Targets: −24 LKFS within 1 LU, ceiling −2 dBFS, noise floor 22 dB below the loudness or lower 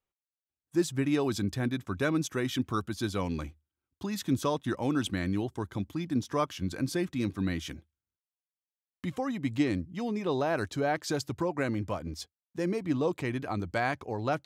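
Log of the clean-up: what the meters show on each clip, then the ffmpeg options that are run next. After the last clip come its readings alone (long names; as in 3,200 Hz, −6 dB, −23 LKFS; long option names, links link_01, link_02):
integrated loudness −31.5 LKFS; sample peak −15.5 dBFS; target loudness −24.0 LKFS
→ -af "volume=7.5dB"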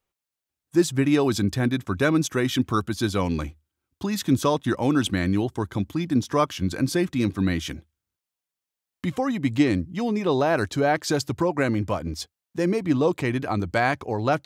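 integrated loudness −24.0 LKFS; sample peak −8.0 dBFS; background noise floor −88 dBFS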